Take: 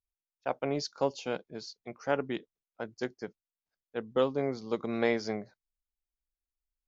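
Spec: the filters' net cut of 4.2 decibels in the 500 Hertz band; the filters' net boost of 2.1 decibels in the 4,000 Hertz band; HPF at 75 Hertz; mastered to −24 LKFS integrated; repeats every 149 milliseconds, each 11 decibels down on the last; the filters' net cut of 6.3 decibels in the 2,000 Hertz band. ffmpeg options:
ffmpeg -i in.wav -af "highpass=75,equalizer=frequency=500:width_type=o:gain=-4.5,equalizer=frequency=2000:width_type=o:gain=-9,equalizer=frequency=4000:width_type=o:gain=5,aecho=1:1:149|298|447:0.282|0.0789|0.0221,volume=12.5dB" out.wav

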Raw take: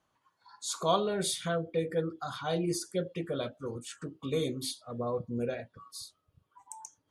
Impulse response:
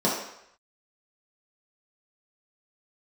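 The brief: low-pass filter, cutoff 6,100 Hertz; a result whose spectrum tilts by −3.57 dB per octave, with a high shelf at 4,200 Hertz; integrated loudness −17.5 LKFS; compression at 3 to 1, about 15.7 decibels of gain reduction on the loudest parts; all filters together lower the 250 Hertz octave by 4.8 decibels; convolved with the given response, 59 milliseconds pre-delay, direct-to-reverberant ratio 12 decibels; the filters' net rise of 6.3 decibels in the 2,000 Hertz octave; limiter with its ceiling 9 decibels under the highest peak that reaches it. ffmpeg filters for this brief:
-filter_complex "[0:a]lowpass=6100,equalizer=frequency=250:width_type=o:gain=-8,equalizer=frequency=2000:width_type=o:gain=7.5,highshelf=frequency=4200:gain=7.5,acompressor=threshold=-43dB:ratio=3,alimiter=level_in=11.5dB:limit=-24dB:level=0:latency=1,volume=-11.5dB,asplit=2[link_01][link_02];[1:a]atrim=start_sample=2205,adelay=59[link_03];[link_02][link_03]afir=irnorm=-1:irlink=0,volume=-26.5dB[link_04];[link_01][link_04]amix=inputs=2:normalize=0,volume=28dB"

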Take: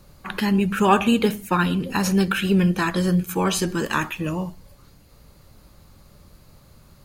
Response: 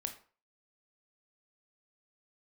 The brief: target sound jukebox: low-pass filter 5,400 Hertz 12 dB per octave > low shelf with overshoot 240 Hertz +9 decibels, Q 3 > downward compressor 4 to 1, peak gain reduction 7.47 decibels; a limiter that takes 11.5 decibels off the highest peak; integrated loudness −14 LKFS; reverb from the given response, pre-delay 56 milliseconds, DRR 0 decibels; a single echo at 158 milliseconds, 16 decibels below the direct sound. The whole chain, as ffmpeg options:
-filter_complex "[0:a]alimiter=limit=-16dB:level=0:latency=1,aecho=1:1:158:0.158,asplit=2[link_01][link_02];[1:a]atrim=start_sample=2205,adelay=56[link_03];[link_02][link_03]afir=irnorm=-1:irlink=0,volume=1dB[link_04];[link_01][link_04]amix=inputs=2:normalize=0,lowpass=5400,lowshelf=frequency=240:width_type=q:width=3:gain=9,acompressor=threshold=-6dB:ratio=4,volume=-2dB"

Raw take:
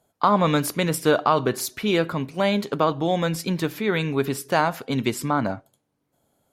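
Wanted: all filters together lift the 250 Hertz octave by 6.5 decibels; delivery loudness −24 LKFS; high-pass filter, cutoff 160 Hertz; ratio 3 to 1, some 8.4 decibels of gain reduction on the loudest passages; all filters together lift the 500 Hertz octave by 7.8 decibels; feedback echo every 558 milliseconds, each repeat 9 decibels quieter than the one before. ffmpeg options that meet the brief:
ffmpeg -i in.wav -af "highpass=160,equalizer=frequency=250:width_type=o:gain=7.5,equalizer=frequency=500:width_type=o:gain=7.5,acompressor=threshold=-17dB:ratio=3,aecho=1:1:558|1116|1674|2232:0.355|0.124|0.0435|0.0152,volume=-2dB" out.wav

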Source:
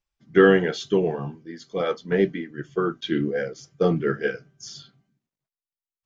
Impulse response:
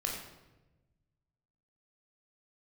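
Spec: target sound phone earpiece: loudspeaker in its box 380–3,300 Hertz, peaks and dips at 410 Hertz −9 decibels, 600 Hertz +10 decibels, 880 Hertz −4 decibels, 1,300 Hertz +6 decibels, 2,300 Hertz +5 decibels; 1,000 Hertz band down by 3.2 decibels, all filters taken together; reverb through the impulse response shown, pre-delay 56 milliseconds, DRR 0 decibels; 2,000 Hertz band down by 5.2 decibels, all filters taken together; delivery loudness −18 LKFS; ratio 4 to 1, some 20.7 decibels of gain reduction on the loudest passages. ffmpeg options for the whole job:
-filter_complex "[0:a]equalizer=frequency=1000:width_type=o:gain=-8.5,equalizer=frequency=2000:width_type=o:gain=-6,acompressor=threshold=-38dB:ratio=4,asplit=2[link_01][link_02];[1:a]atrim=start_sample=2205,adelay=56[link_03];[link_02][link_03]afir=irnorm=-1:irlink=0,volume=-3.5dB[link_04];[link_01][link_04]amix=inputs=2:normalize=0,highpass=380,equalizer=frequency=410:width_type=q:width=4:gain=-9,equalizer=frequency=600:width_type=q:width=4:gain=10,equalizer=frequency=880:width_type=q:width=4:gain=-4,equalizer=frequency=1300:width_type=q:width=4:gain=6,equalizer=frequency=2300:width_type=q:width=4:gain=5,lowpass=frequency=3300:width=0.5412,lowpass=frequency=3300:width=1.3066,volume=24dB"

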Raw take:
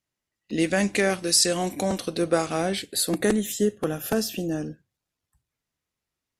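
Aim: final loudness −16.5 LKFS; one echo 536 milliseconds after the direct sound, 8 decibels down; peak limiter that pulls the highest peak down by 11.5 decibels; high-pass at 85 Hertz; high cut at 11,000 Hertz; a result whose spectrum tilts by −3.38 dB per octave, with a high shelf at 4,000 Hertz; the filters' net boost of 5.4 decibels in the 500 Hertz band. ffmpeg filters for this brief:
ffmpeg -i in.wav -af "highpass=85,lowpass=11000,equalizer=frequency=500:width_type=o:gain=6.5,highshelf=frequency=4000:gain=8,alimiter=limit=-13dB:level=0:latency=1,aecho=1:1:536:0.398,volume=7dB" out.wav

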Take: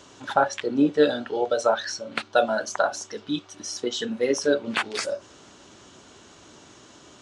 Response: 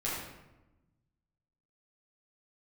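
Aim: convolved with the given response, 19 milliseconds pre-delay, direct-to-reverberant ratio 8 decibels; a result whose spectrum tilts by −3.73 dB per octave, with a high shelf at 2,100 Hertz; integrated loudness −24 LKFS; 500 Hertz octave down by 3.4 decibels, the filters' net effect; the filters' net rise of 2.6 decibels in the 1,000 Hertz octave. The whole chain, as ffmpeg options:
-filter_complex "[0:a]equalizer=frequency=500:width_type=o:gain=-6,equalizer=frequency=1000:width_type=o:gain=7.5,highshelf=frequency=2100:gain=-4.5,asplit=2[link_01][link_02];[1:a]atrim=start_sample=2205,adelay=19[link_03];[link_02][link_03]afir=irnorm=-1:irlink=0,volume=-14dB[link_04];[link_01][link_04]amix=inputs=2:normalize=0,volume=2dB"

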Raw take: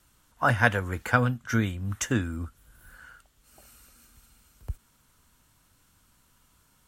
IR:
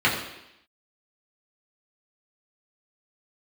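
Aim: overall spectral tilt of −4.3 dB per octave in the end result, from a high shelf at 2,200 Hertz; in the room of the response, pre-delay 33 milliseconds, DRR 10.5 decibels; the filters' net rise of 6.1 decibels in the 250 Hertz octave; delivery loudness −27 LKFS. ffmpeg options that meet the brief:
-filter_complex "[0:a]equalizer=frequency=250:width_type=o:gain=7,highshelf=frequency=2200:gain=-4,asplit=2[link_01][link_02];[1:a]atrim=start_sample=2205,adelay=33[link_03];[link_02][link_03]afir=irnorm=-1:irlink=0,volume=-28.5dB[link_04];[link_01][link_04]amix=inputs=2:normalize=0,volume=-2dB"

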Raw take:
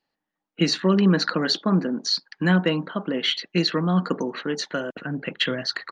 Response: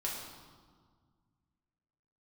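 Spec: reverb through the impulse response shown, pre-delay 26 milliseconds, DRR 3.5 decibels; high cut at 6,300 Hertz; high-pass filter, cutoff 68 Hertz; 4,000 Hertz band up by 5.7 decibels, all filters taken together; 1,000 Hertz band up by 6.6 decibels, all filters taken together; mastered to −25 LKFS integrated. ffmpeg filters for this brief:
-filter_complex "[0:a]highpass=68,lowpass=6300,equalizer=frequency=1000:width_type=o:gain=8,equalizer=frequency=4000:width_type=o:gain=7,asplit=2[link_01][link_02];[1:a]atrim=start_sample=2205,adelay=26[link_03];[link_02][link_03]afir=irnorm=-1:irlink=0,volume=-6.5dB[link_04];[link_01][link_04]amix=inputs=2:normalize=0,volume=-6dB"

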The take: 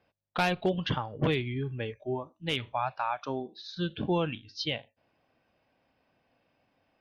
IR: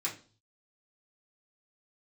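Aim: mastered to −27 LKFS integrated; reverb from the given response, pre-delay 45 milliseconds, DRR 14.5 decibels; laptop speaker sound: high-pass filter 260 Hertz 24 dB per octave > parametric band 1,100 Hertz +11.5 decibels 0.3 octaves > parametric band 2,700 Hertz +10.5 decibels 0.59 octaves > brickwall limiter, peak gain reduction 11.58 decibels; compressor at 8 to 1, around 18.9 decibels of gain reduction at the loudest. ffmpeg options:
-filter_complex "[0:a]acompressor=threshold=-43dB:ratio=8,asplit=2[link_01][link_02];[1:a]atrim=start_sample=2205,adelay=45[link_03];[link_02][link_03]afir=irnorm=-1:irlink=0,volume=-18dB[link_04];[link_01][link_04]amix=inputs=2:normalize=0,highpass=frequency=260:width=0.5412,highpass=frequency=260:width=1.3066,equalizer=frequency=1100:width_type=o:width=0.3:gain=11.5,equalizer=frequency=2700:width_type=o:width=0.59:gain=10.5,volume=20.5dB,alimiter=limit=-15.5dB:level=0:latency=1"

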